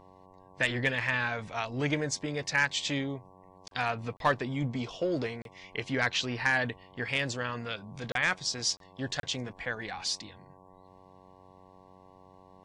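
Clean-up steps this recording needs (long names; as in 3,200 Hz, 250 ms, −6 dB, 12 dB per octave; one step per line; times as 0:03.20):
hum removal 93.5 Hz, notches 12
repair the gap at 0:03.68/0:04.17/0:05.42/0:08.12/0:08.77/0:09.20, 32 ms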